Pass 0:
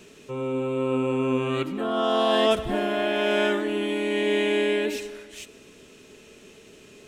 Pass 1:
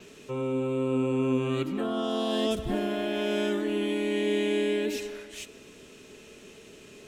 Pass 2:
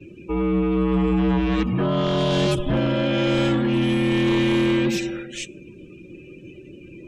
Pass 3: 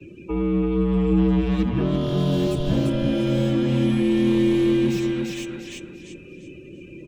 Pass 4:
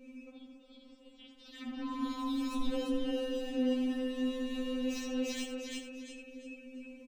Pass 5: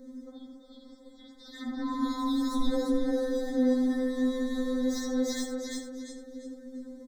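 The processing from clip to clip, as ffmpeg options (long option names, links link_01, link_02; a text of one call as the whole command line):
ffmpeg -i in.wav -filter_complex "[0:a]adynamicequalizer=threshold=0.00112:dfrequency=8900:dqfactor=3.3:tfrequency=8900:tqfactor=3.3:attack=5:release=100:ratio=0.375:range=2:mode=cutabove:tftype=bell,acrossover=split=400|3900[link_01][link_02][link_03];[link_02]acompressor=threshold=-34dB:ratio=6[link_04];[link_01][link_04][link_03]amix=inputs=3:normalize=0" out.wav
ffmpeg -i in.wav -af "afftdn=noise_reduction=27:noise_floor=-48,aeval=exprs='0.168*sin(PI/2*2*val(0)/0.168)':channel_layout=same,afreqshift=-75" out.wav
ffmpeg -i in.wav -filter_complex "[0:a]aecho=1:1:344|688|1032|1376:0.562|0.169|0.0506|0.0152,acrossover=split=100|480|3600[link_01][link_02][link_03][link_04];[link_03]acompressor=threshold=-36dB:ratio=6[link_05];[link_04]asoftclip=type=tanh:threshold=-39.5dB[link_06];[link_01][link_02][link_05][link_06]amix=inputs=4:normalize=0" out.wav
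ffmpeg -i in.wav -af "alimiter=limit=-20dB:level=0:latency=1:release=13,aecho=1:1:81:0.299,afftfilt=real='re*3.46*eq(mod(b,12),0)':imag='im*3.46*eq(mod(b,12),0)':win_size=2048:overlap=0.75,volume=-2dB" out.wav
ffmpeg -i in.wav -af "asuperstop=centerf=2700:order=20:qfactor=2.2,volume=6dB" out.wav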